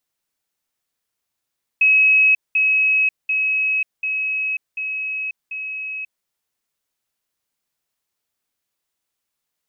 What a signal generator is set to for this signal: level ladder 2560 Hz -10.5 dBFS, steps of -3 dB, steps 6, 0.54 s 0.20 s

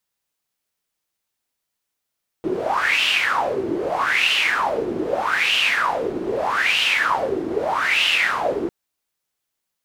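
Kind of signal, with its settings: wind-like swept noise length 6.25 s, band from 340 Hz, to 2900 Hz, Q 7.4, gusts 5, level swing 5.5 dB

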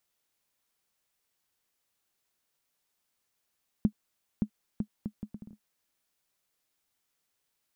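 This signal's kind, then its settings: bouncing ball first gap 0.57 s, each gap 0.67, 211 Hz, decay 77 ms -13.5 dBFS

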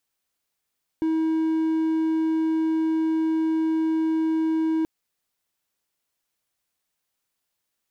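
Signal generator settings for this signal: tone triangle 320 Hz -18 dBFS 3.83 s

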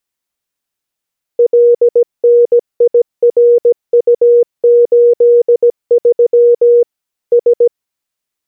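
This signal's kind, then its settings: Morse "LNIRU83 S" 17 wpm 477 Hz -3.5 dBFS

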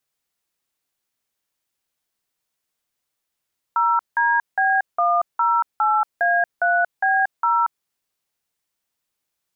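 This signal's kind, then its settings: DTMF "0DB108A3B0", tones 0.232 s, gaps 0.176 s, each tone -18 dBFS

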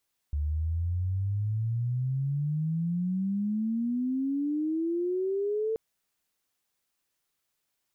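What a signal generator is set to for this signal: chirp logarithmic 72 Hz -> 450 Hz -26 dBFS -> -26 dBFS 5.43 s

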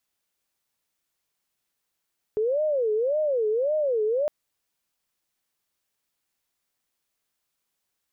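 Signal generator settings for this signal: siren wail 424–618 Hz 1.8/s sine -21 dBFS 1.91 s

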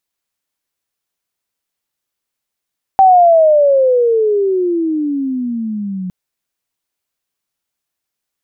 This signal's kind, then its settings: chirp logarithmic 780 Hz -> 180 Hz -3.5 dBFS -> -19.5 dBFS 3.11 s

